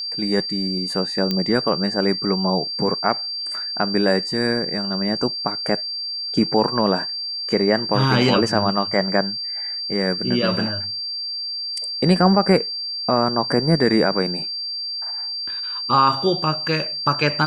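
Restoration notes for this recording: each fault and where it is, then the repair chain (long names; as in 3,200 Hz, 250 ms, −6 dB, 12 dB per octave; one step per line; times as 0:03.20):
whistle 4,700 Hz −25 dBFS
0:01.31: click −9 dBFS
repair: click removal
notch filter 4,700 Hz, Q 30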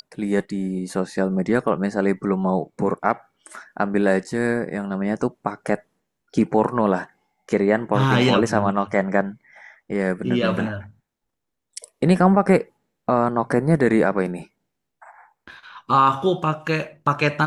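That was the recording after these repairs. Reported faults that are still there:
none of them is left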